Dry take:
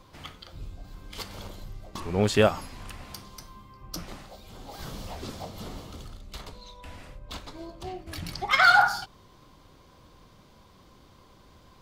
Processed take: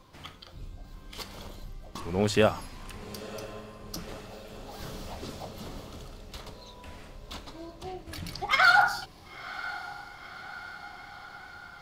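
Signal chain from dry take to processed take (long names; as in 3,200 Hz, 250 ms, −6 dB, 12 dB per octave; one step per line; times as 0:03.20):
mains-hum notches 50/100 Hz
feedback delay with all-pass diffusion 988 ms, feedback 65%, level −15.5 dB
level −2 dB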